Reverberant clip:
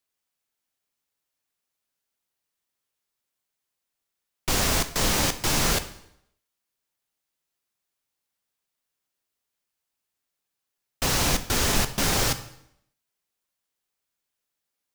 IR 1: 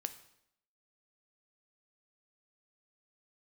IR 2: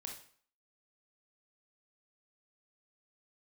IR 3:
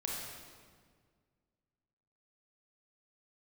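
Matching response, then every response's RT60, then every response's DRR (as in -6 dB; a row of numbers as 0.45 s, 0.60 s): 1; 0.75 s, 0.50 s, 1.8 s; 9.5 dB, 1.0 dB, -3.0 dB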